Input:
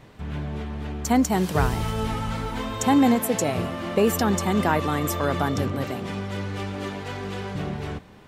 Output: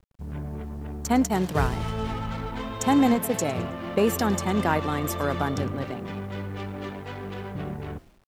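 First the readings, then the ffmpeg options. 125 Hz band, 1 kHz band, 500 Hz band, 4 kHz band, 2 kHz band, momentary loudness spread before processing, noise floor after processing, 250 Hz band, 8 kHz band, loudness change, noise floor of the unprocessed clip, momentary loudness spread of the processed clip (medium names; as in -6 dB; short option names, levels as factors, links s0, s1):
-2.5 dB, -2.0 dB, -2.0 dB, -3.5 dB, -2.5 dB, 11 LU, -52 dBFS, -2.0 dB, -2.5 dB, -2.0 dB, -47 dBFS, 13 LU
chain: -filter_complex "[0:a]anlmdn=6.31,asplit=4[s0][s1][s2][s3];[s1]adelay=107,afreqshift=-58,volume=0.1[s4];[s2]adelay=214,afreqshift=-116,volume=0.0422[s5];[s3]adelay=321,afreqshift=-174,volume=0.0176[s6];[s0][s4][s5][s6]amix=inputs=4:normalize=0,aeval=exprs='0.398*(cos(1*acos(clip(val(0)/0.398,-1,1)))-cos(1*PI/2))+0.0158*(cos(3*acos(clip(val(0)/0.398,-1,1)))-cos(3*PI/2))+0.00631*(cos(7*acos(clip(val(0)/0.398,-1,1)))-cos(7*PI/2))':c=same,acrusher=bits=9:mix=0:aa=0.000001,volume=0.891"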